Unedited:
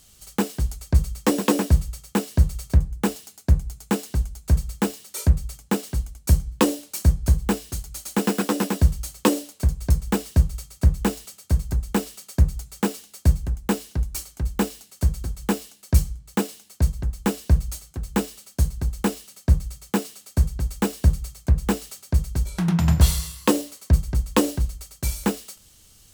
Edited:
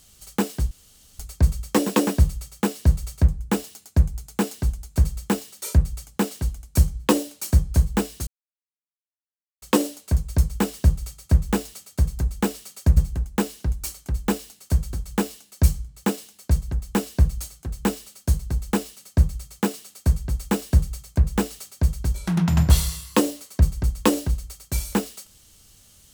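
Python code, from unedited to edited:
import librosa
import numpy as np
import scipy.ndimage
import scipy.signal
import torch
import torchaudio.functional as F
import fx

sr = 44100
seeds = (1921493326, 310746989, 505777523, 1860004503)

y = fx.edit(x, sr, fx.insert_room_tone(at_s=0.71, length_s=0.48),
    fx.silence(start_s=7.79, length_s=1.35),
    fx.cut(start_s=12.49, length_s=0.79), tone=tone)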